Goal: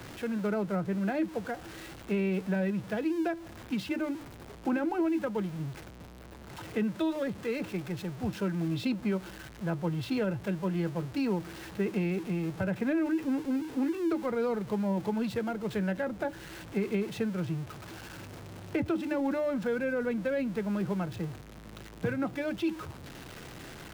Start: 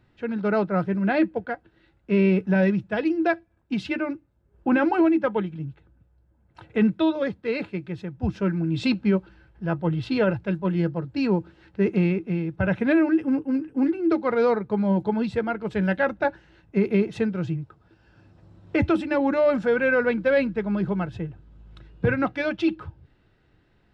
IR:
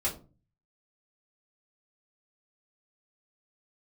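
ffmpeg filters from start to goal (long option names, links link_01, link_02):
-filter_complex "[0:a]aeval=exprs='val(0)+0.5*0.0211*sgn(val(0))':channel_layout=same,acrossover=split=96|350|810[link_01][link_02][link_03][link_04];[link_01]acompressor=threshold=-52dB:ratio=4[link_05];[link_02]acompressor=threshold=-25dB:ratio=4[link_06];[link_03]acompressor=threshold=-30dB:ratio=4[link_07];[link_04]acompressor=threshold=-35dB:ratio=4[link_08];[link_05][link_06][link_07][link_08]amix=inputs=4:normalize=0,volume=-5dB"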